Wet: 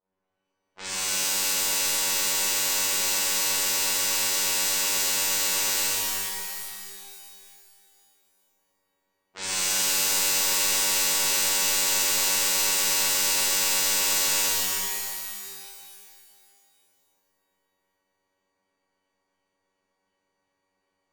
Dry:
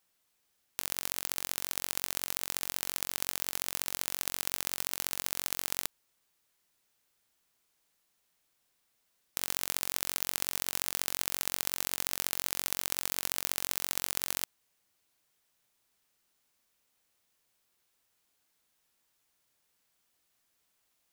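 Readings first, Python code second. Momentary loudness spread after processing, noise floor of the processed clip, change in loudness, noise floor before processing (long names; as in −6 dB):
12 LU, −78 dBFS, +11.0 dB, −76 dBFS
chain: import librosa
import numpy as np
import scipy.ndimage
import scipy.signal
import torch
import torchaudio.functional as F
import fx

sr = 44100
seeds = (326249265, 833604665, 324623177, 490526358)

y = fx.partial_stretch(x, sr, pct=80)
y = fx.robotise(y, sr, hz=94.4)
y = fx.env_lowpass(y, sr, base_hz=700.0, full_db=-36.5)
y = fx.rev_shimmer(y, sr, seeds[0], rt60_s=2.4, semitones=12, shimmer_db=-2, drr_db=-12.0)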